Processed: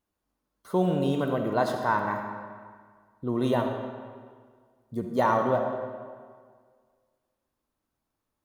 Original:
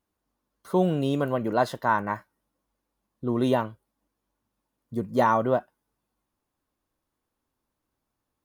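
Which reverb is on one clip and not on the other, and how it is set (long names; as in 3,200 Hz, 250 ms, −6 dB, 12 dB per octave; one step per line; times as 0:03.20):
comb and all-pass reverb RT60 1.8 s, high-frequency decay 0.75×, pre-delay 20 ms, DRR 4 dB
level −2.5 dB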